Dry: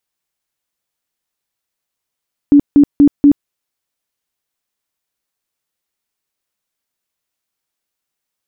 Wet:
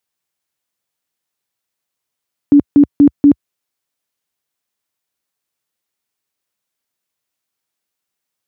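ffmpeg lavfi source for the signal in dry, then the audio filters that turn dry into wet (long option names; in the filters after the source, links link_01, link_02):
-f lavfi -i "aevalsrc='0.708*sin(2*PI*287*mod(t,0.24))*lt(mod(t,0.24),22/287)':duration=0.96:sample_rate=44100"
-af "highpass=frequency=70:width=0.5412,highpass=frequency=70:width=1.3066"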